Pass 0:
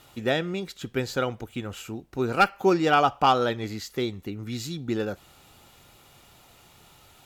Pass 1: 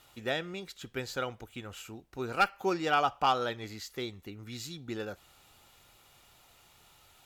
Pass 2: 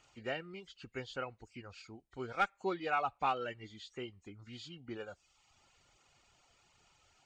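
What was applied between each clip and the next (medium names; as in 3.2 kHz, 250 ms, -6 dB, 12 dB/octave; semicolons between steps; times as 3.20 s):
peaking EQ 200 Hz -6.5 dB 2.9 oct; trim -5 dB
knee-point frequency compression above 1.9 kHz 1.5:1; reverb removal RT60 0.78 s; trim -5.5 dB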